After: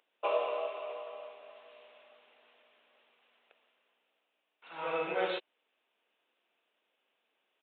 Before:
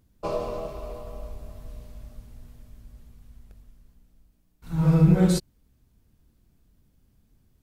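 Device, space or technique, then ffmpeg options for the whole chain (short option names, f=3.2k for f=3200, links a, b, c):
musical greeting card: -af "aresample=8000,aresample=44100,highpass=f=510:w=0.5412,highpass=f=510:w=1.3066,equalizer=f=2.7k:t=o:w=0.55:g=8.5"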